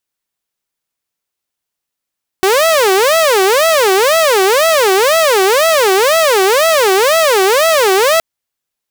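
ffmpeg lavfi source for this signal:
-f lavfi -i "aevalsrc='0.531*(2*mod((517*t-142/(2*PI*2)*sin(2*PI*2*t)),1)-1)':d=5.77:s=44100"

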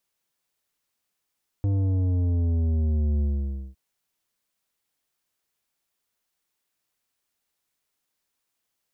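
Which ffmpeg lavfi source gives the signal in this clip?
-f lavfi -i "aevalsrc='0.0841*clip((2.11-t)/0.54,0,1)*tanh(3.16*sin(2*PI*100*2.11/log(65/100)*(exp(log(65/100)*t/2.11)-1)))/tanh(3.16)':d=2.11:s=44100"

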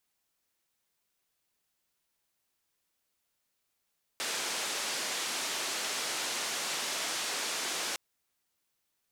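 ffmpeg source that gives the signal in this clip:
-f lavfi -i "anoisesrc=c=white:d=3.76:r=44100:seed=1,highpass=f=290,lowpass=f=7100,volume=-24.8dB"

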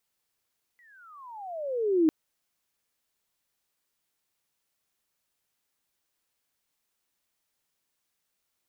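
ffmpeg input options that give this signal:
-f lavfi -i "aevalsrc='pow(10,(-17+39*(t/1.3-1))/20)*sin(2*PI*1990*1.3/(-32.5*log(2)/12)*(exp(-32.5*log(2)/12*t/1.3)-1))':d=1.3:s=44100"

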